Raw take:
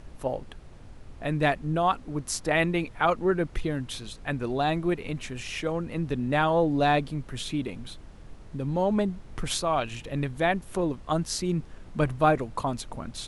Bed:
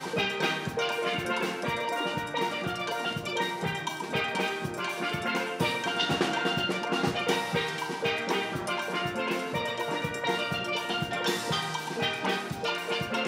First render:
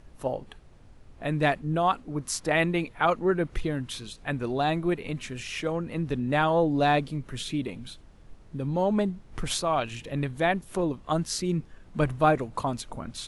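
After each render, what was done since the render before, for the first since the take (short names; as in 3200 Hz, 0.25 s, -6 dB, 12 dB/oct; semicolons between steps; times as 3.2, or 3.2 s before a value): noise print and reduce 6 dB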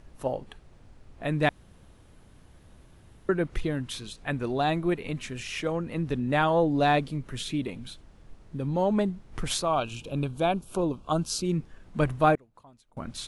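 1.49–3.29 room tone; 9.66–11.45 Butterworth band-stop 1900 Hz, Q 2.3; 12.35–12.97 flipped gate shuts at -35 dBFS, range -25 dB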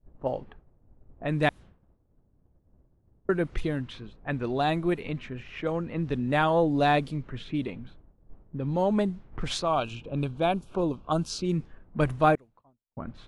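expander -44 dBFS; low-pass opened by the level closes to 600 Hz, open at -22.5 dBFS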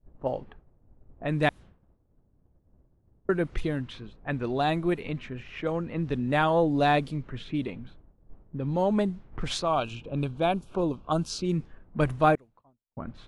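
nothing audible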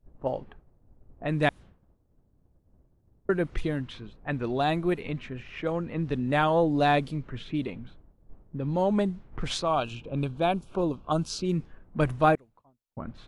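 wow and flutter 28 cents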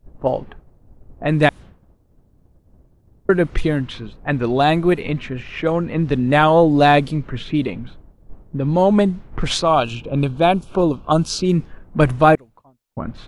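gain +10.5 dB; limiter -2 dBFS, peak gain reduction 2.5 dB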